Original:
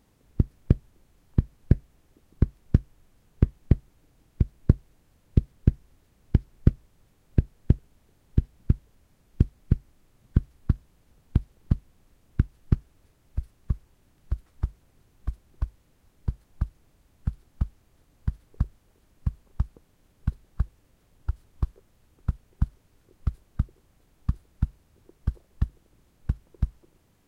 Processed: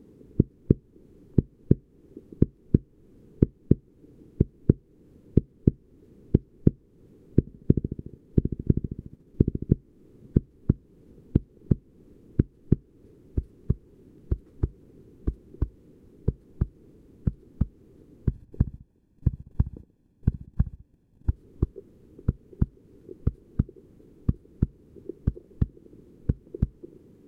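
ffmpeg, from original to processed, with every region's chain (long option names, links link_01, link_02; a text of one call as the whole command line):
ffmpeg -i in.wav -filter_complex "[0:a]asettb=1/sr,asplit=3[link_01][link_02][link_03];[link_01]atrim=end=7.404[link_04];[link_02]atrim=start=7.4:end=9.74,asetpts=PTS-STARTPTS,afade=type=in:duration=0.004:curve=qsin,afade=type=out:start_time=2.336:duration=0.004:curve=qsin,agate=range=-33dB:threshold=-58dB:ratio=3:release=100:detection=peak,aecho=1:1:72|144|216|288|360|432:0.398|0.199|0.0995|0.0498|0.0249|0.0124,atrim=end_sample=103194[link_05];[link_03]atrim=start=9.736[link_06];[link_04][link_05]acrossfade=duration=0.004:curve1=hsin:curve2=qsin[link_07];[link_07][link_06]acrossfade=duration=0.004:curve1=qsin:curve2=hsin,asettb=1/sr,asplit=3[link_08][link_09][link_10];[link_08]atrim=end=18.294[link_11];[link_09]atrim=start=18.29:end=21.3,asetpts=PTS-STARTPTS,afade=type=in:duration=0.004:curve=qsin,afade=type=out:start_time=3.006:duration=0.004:curve=qsin,agate=range=-13dB:threshold=-58dB:ratio=16:release=100:detection=peak,aecho=1:1:1.2:0.64,atrim=end_sample=132741,asplit=2[link_12][link_13];[link_13]adelay=66,lowpass=frequency=1500:poles=1,volume=-16dB,asplit=2[link_14][link_15];[link_15]adelay=66,lowpass=frequency=1500:poles=1,volume=0.38,asplit=2[link_16][link_17];[link_17]adelay=66,lowpass=frequency=1500:poles=1,volume=0.38[link_18];[link_12][link_14][link_16][link_18]amix=inputs=4:normalize=0,atrim=end_sample=132741[link_19];[link_10]atrim=start=21.296[link_20];[link_11][link_19]acrossfade=duration=0.004:curve1=hsin:curve2=qsin[link_21];[link_21][link_20]acrossfade=duration=0.004:curve1=qsin:curve2=hsin,equalizer=frequency=290:width=0.37:gain=14,acompressor=threshold=-25dB:ratio=2,lowshelf=frequency=530:width_type=q:width=3:gain=6.5,volume=-6dB" out.wav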